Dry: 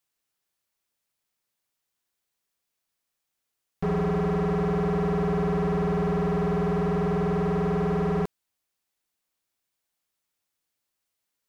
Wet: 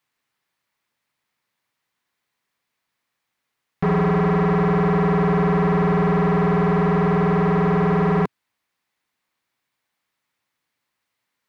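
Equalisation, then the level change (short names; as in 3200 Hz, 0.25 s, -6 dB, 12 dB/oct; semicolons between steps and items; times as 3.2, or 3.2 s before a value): graphic EQ 125/250/500/1000/2000/4000 Hz +10/+8/+4/+10/+11/+5 dB; -2.5 dB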